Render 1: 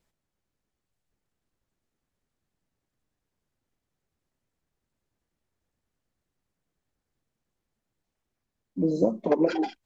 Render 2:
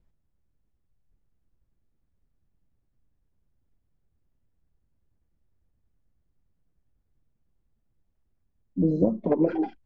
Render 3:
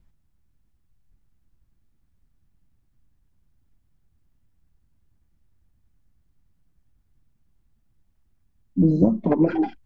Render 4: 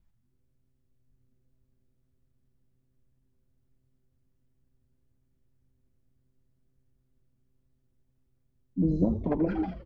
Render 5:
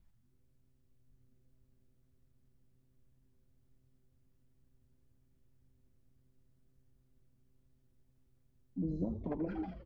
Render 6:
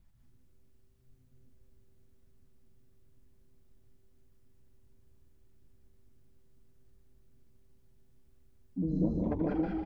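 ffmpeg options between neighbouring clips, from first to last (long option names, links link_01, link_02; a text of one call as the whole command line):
ffmpeg -i in.wav -filter_complex "[0:a]aemphasis=mode=reproduction:type=riaa,acrossover=split=2700[link_01][link_02];[link_02]acompressor=threshold=-60dB:ratio=4:attack=1:release=60[link_03];[link_01][link_03]amix=inputs=2:normalize=0,volume=-4dB" out.wav
ffmpeg -i in.wav -af "equalizer=frequency=490:width_type=o:width=0.93:gain=-8.5,volume=7.5dB" out.wav
ffmpeg -i in.wav -filter_complex "[0:a]asplit=6[link_01][link_02][link_03][link_04][link_05][link_06];[link_02]adelay=82,afreqshift=-130,volume=-9dB[link_07];[link_03]adelay=164,afreqshift=-260,volume=-15.4dB[link_08];[link_04]adelay=246,afreqshift=-390,volume=-21.8dB[link_09];[link_05]adelay=328,afreqshift=-520,volume=-28.1dB[link_10];[link_06]adelay=410,afreqshift=-650,volume=-34.5dB[link_11];[link_01][link_07][link_08][link_09][link_10][link_11]amix=inputs=6:normalize=0,volume=-8dB" out.wav
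ffmpeg -i in.wav -af "acompressor=threshold=-56dB:ratio=1.5,volume=1dB" out.wav
ffmpeg -i in.wav -af "aecho=1:1:151.6|195.3:0.631|0.708,volume=3.5dB" out.wav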